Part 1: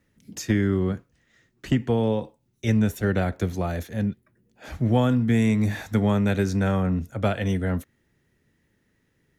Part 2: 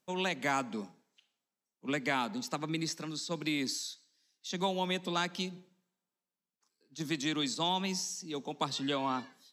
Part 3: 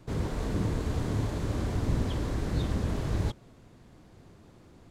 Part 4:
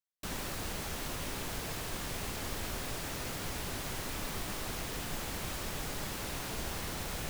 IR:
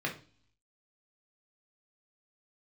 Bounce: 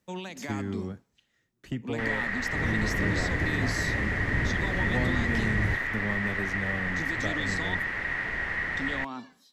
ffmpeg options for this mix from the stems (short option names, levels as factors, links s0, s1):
-filter_complex "[0:a]volume=0.266[s0];[1:a]equalizer=f=210:t=o:w=0.77:g=5,alimiter=level_in=1.5:limit=0.0631:level=0:latency=1:release=112,volume=0.668,volume=1,asplit=3[s1][s2][s3];[s1]atrim=end=7.75,asetpts=PTS-STARTPTS,afade=t=out:st=7.746:d=0.004:c=hsin[s4];[s2]atrim=start=7.75:end=8.77,asetpts=PTS-STARTPTS,volume=0[s5];[s3]atrim=start=8.77,asetpts=PTS-STARTPTS,afade=t=in:d=0.004:c=hsin[s6];[s4][s5][s6]concat=n=3:v=0:a=1[s7];[2:a]lowpass=f=3900:p=1,adelay=2450,volume=0.891[s8];[3:a]lowpass=f=1900:t=q:w=16,aemphasis=mode=production:type=cd,adelay=1750,volume=1.06[s9];[s0][s7][s8][s9]amix=inputs=4:normalize=0"